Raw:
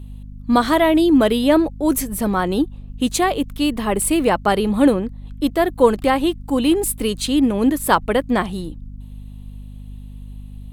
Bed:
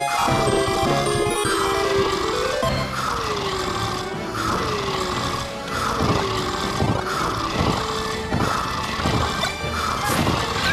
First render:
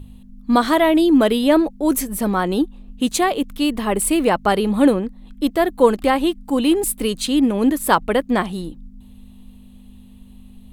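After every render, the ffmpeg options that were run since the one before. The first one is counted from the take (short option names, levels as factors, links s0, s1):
-af "bandreject=f=50:t=h:w=4,bandreject=f=100:t=h:w=4,bandreject=f=150:t=h:w=4"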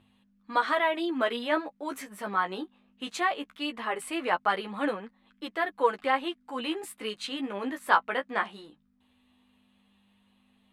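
-af "flanger=delay=8.8:depth=7.3:regen=11:speed=0.19:shape=triangular,bandpass=f=1600:t=q:w=1.1:csg=0"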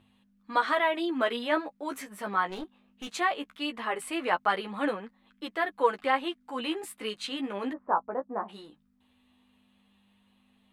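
-filter_complex "[0:a]asettb=1/sr,asplit=3[s0][s1][s2];[s0]atrim=end=2.494[s3];[s1]atrim=start=2.49:end=3.1,asetpts=PTS-STARTPTS,afade=t=in:d=0.004:c=qsin,afade=t=out:st=0.606:d=0.004:c=qsin,aeval=exprs='clip(val(0),-1,0.0112)':c=same[s4];[s2]atrim=start=3.096[s5];[s3][s4]acrossfade=d=0.004:c1=hsin:c2=qsin[s6];[s6][s5]acrossfade=d=0.004:c1=qsin:c2=hsin,asplit=3[s7][s8][s9];[s7]afade=t=out:st=7.72:d=0.02[s10];[s8]lowpass=f=1000:w=0.5412,lowpass=f=1000:w=1.3066,afade=t=in:st=7.72:d=0.02,afade=t=out:st=8.48:d=0.02[s11];[s9]afade=t=in:st=8.48:d=0.02[s12];[s10][s11][s12]amix=inputs=3:normalize=0"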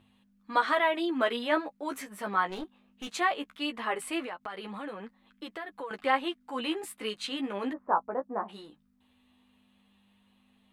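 -filter_complex "[0:a]asettb=1/sr,asplit=3[s0][s1][s2];[s0]atrim=end=4.224[s3];[s1]atrim=start=4.22:end=5.91,asetpts=PTS-STARTPTS,afade=t=in:d=0.004:c=qsin,afade=t=out:st=1.686:d=0.004:c=qsin,acompressor=threshold=0.0158:ratio=5:attack=3.2:release=140:knee=1:detection=peak[s4];[s2]atrim=start=5.906[s5];[s3][s4]acrossfade=d=0.004:c1=hsin:c2=qsin[s6];[s6][s5]acrossfade=d=0.004:c1=qsin:c2=hsin"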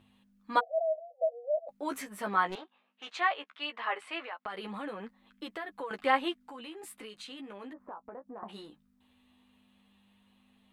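-filter_complex "[0:a]asplit=3[s0][s1][s2];[s0]afade=t=out:st=0.59:d=0.02[s3];[s1]asuperpass=centerf=600:order=20:qfactor=2.3,afade=t=in:st=0.59:d=0.02,afade=t=out:st=1.68:d=0.02[s4];[s2]afade=t=in:st=1.68:d=0.02[s5];[s3][s4][s5]amix=inputs=3:normalize=0,asettb=1/sr,asplit=3[s6][s7][s8];[s6]atrim=end=2.554[s9];[s7]atrim=start=2.55:end=4.46,asetpts=PTS-STARTPTS,afade=t=in:d=0.004:c=qsin,afade=t=out:st=1.906:d=0.004:c=qsin,highpass=650,lowpass=3600[s10];[s8]atrim=start=4.456[s11];[s9][s10]acrossfade=d=0.004:c1=hsin:c2=qsin[s12];[s12][s11]acrossfade=d=0.004:c1=qsin:c2=hsin,asettb=1/sr,asplit=3[s13][s14][s15];[s13]atrim=end=6.394[s16];[s14]atrim=start=6.39:end=8.43,asetpts=PTS-STARTPTS,afade=t=in:d=0.004:c=qsin,afade=t=out:st=2.036:d=0.004:c=qsin,acompressor=threshold=0.00708:ratio=5:attack=3.2:release=140:knee=1:detection=peak[s17];[s15]atrim=start=8.426[s18];[s16][s17]acrossfade=d=0.004:c1=hsin:c2=qsin[s19];[s19][s18]acrossfade=d=0.004:c1=qsin:c2=hsin"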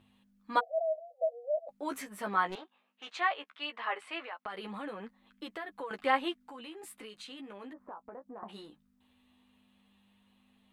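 -af "volume=0.841"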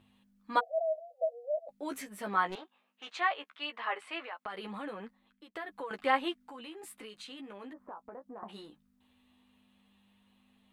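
-filter_complex "[0:a]asplit=3[s0][s1][s2];[s0]afade=t=out:st=1.24:d=0.02[s3];[s1]equalizer=f=1100:t=o:w=1:g=-5.5,afade=t=in:st=1.24:d=0.02,afade=t=out:st=2.28:d=0.02[s4];[s2]afade=t=in:st=2.28:d=0.02[s5];[s3][s4][s5]amix=inputs=3:normalize=0,asplit=2[s6][s7];[s6]atrim=end=5.55,asetpts=PTS-STARTPTS,afade=t=out:st=5:d=0.55:silence=0.0749894[s8];[s7]atrim=start=5.55,asetpts=PTS-STARTPTS,afade=t=in:d=0.004:c=hsin:silence=0.0749894[s9];[s8][s9]concat=n=2:v=0:a=1"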